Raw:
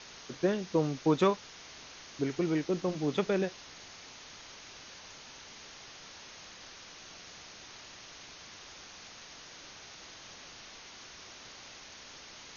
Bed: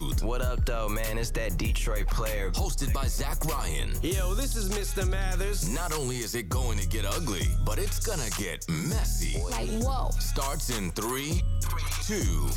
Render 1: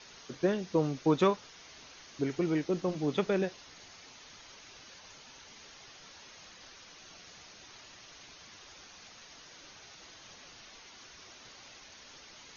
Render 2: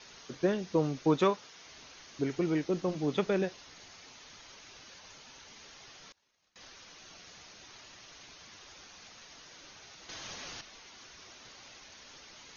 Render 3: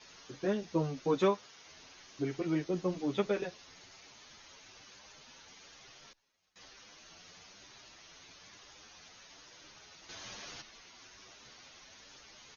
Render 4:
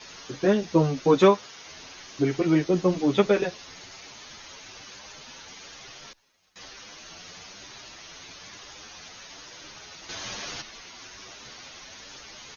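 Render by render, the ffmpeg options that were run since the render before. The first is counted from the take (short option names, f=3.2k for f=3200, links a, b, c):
-af "afftdn=nr=6:nf=-51"
-filter_complex "[0:a]asettb=1/sr,asplit=3[a][b][c];[a]atrim=end=1.174[d];[b]atrim=start=1.17:end=1.66,asetpts=PTS-STARTPTS,afade=t=in:d=0.004:c=qsin,afade=t=out:st=0.486:d=0.004:c=qsin,highpass=f=170:p=1[e];[c]atrim=start=1.656[f];[d][e]acrossfade=d=0.004:c1=hsin:c2=qsin[g];[g][f]acrossfade=d=0.004:c1=qsin:c2=hsin,asettb=1/sr,asplit=3[h][i][j];[h]atrim=end=6.124[k];[i]atrim=start=6.12:end=6.56,asetpts=PTS-STARTPTS,afade=t=in:d=0.004:c=qsin,afade=t=out:st=0.436:d=0.004:c=qsin,agate=range=-26dB:threshold=-50dB:ratio=16:release=100:detection=peak[l];[j]atrim=start=6.556[m];[k][l]acrossfade=d=0.004:c1=hsin:c2=qsin[n];[n][m]acrossfade=d=0.004:c1=qsin:c2=hsin,asplit=3[o][p][q];[o]atrim=end=10.092[r];[p]atrim=start=10.088:end=10.612,asetpts=PTS-STARTPTS,volume=8.5dB[s];[q]atrim=start=10.608[t];[r][s]acrossfade=d=0.004:c1=hsin:c2=hsin[u];[u][t]acrossfade=d=0.004:c1=hsin:c2=hsin"
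-filter_complex "[0:a]asplit=2[a][b];[b]adelay=8.9,afreqshift=1.1[c];[a][c]amix=inputs=2:normalize=1"
-af "volume=11dB"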